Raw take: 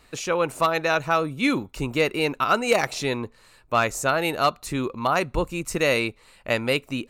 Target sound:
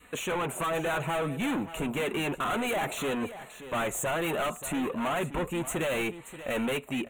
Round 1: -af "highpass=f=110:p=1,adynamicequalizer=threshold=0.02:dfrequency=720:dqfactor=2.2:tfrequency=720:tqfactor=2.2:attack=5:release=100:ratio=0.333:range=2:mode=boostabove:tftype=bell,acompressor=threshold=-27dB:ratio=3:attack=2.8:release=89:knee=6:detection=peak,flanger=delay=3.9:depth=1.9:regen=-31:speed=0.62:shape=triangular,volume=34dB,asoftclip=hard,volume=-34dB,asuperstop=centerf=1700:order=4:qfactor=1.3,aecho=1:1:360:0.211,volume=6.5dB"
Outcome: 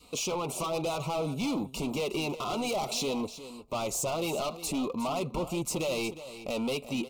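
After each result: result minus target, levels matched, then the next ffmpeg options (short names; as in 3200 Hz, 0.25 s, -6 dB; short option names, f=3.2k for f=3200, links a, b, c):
echo 0.221 s early; compressor: peak gain reduction +6 dB; 2000 Hz band -6.0 dB
-af "highpass=f=110:p=1,adynamicequalizer=threshold=0.02:dfrequency=720:dqfactor=2.2:tfrequency=720:tqfactor=2.2:attack=5:release=100:ratio=0.333:range=2:mode=boostabove:tftype=bell,acompressor=threshold=-27dB:ratio=3:attack=2.8:release=89:knee=6:detection=peak,flanger=delay=3.9:depth=1.9:regen=-31:speed=0.62:shape=triangular,volume=34dB,asoftclip=hard,volume=-34dB,asuperstop=centerf=1700:order=4:qfactor=1.3,aecho=1:1:581:0.211,volume=6.5dB"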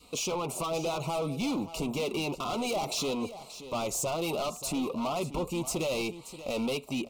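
compressor: peak gain reduction +6 dB; 2000 Hz band -6.0 dB
-af "highpass=f=110:p=1,adynamicequalizer=threshold=0.02:dfrequency=720:dqfactor=2.2:tfrequency=720:tqfactor=2.2:attack=5:release=100:ratio=0.333:range=2:mode=boostabove:tftype=bell,acompressor=threshold=-18dB:ratio=3:attack=2.8:release=89:knee=6:detection=peak,flanger=delay=3.9:depth=1.9:regen=-31:speed=0.62:shape=triangular,volume=34dB,asoftclip=hard,volume=-34dB,asuperstop=centerf=1700:order=4:qfactor=1.3,aecho=1:1:581:0.211,volume=6.5dB"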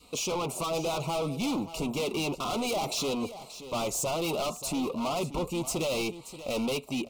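2000 Hz band -6.0 dB
-af "highpass=f=110:p=1,adynamicequalizer=threshold=0.02:dfrequency=720:dqfactor=2.2:tfrequency=720:tqfactor=2.2:attack=5:release=100:ratio=0.333:range=2:mode=boostabove:tftype=bell,acompressor=threshold=-18dB:ratio=3:attack=2.8:release=89:knee=6:detection=peak,flanger=delay=3.9:depth=1.9:regen=-31:speed=0.62:shape=triangular,volume=34dB,asoftclip=hard,volume=-34dB,asuperstop=centerf=5000:order=4:qfactor=1.3,aecho=1:1:581:0.211,volume=6.5dB"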